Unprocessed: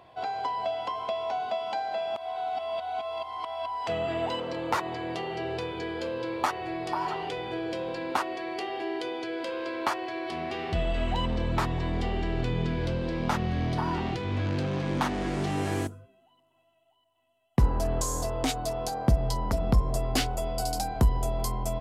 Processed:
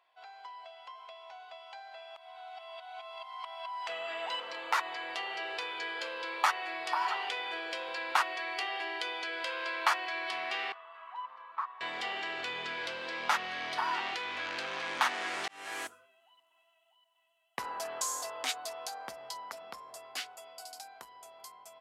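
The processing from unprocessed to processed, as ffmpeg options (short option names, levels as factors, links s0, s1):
-filter_complex "[0:a]asettb=1/sr,asplit=3[s0][s1][s2];[s0]atrim=end=10.724[s3];[s1]atrim=start=10.72:end=11.81,asetpts=PTS-STARTPTS,afade=t=in:d=0.004:c=qsin,afade=t=out:st=1.086:d=0.004:c=qsin,bandpass=f=1100:t=q:w=7.8[s4];[s2]atrim=start=11.806[s5];[s3][s4]acrossfade=d=0.004:c1=hsin:c2=qsin[s6];[s6][s5]acrossfade=d=0.004:c1=qsin:c2=hsin,asplit=2[s7][s8];[s7]atrim=end=15.48,asetpts=PTS-STARTPTS,afade=t=out:st=15.476:d=0.004:c=hsin[s9];[s8]atrim=start=15.48,asetpts=PTS-STARTPTS,afade=t=in:d=0.45[s10];[s9][s10]concat=n=2:v=0:a=1,highpass=1500,highshelf=f=2700:g=-8.5,dynaudnorm=f=470:g=17:m=6.68,volume=0.447"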